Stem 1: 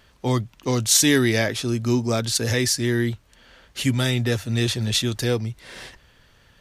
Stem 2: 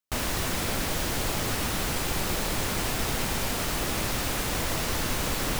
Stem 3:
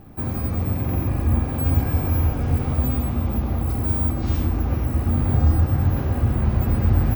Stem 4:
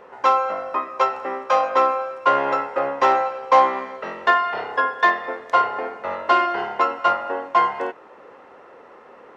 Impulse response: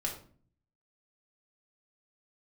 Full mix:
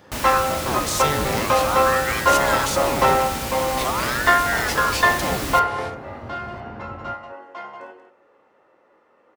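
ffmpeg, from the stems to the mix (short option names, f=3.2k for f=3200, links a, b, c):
-filter_complex "[0:a]alimiter=limit=-14dB:level=0:latency=1,aeval=exprs='val(0)*sin(2*PI*950*n/s+950*0.85/0.45*sin(2*PI*0.45*n/s))':c=same,volume=0.5dB,asplit=2[a][b];[1:a]volume=-1.5dB,asplit=2[c][d];[d]volume=-10dB[e];[2:a]highpass=f=690:p=1,alimiter=level_in=5dB:limit=-24dB:level=0:latency=1:release=277,volume=-5dB,adynamicsmooth=sensitivity=4.5:basefreq=1.3k,volume=2.5dB,asplit=2[f][g];[g]volume=-13.5dB[h];[3:a]highshelf=f=7.1k:g=9,volume=-3.5dB,afade=t=out:st=5.74:d=0.4:silence=0.421697,asplit=3[i][j][k];[j]volume=-5.5dB[l];[k]volume=-13.5dB[m];[b]apad=whole_len=412883[n];[i][n]sidechaingate=range=-33dB:threshold=-47dB:ratio=16:detection=peak[o];[4:a]atrim=start_sample=2205[p];[e][l]amix=inputs=2:normalize=0[q];[q][p]afir=irnorm=-1:irlink=0[r];[h][m]amix=inputs=2:normalize=0,aecho=0:1:186:1[s];[a][c][f][o][r][s]amix=inputs=6:normalize=0,highpass=41"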